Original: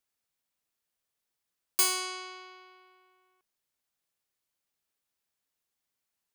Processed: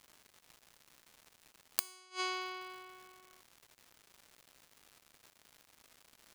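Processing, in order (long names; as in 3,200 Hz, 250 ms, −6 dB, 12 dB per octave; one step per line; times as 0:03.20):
surface crackle 300 per second −53 dBFS
gate with flip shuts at −26 dBFS, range −32 dB
level +7 dB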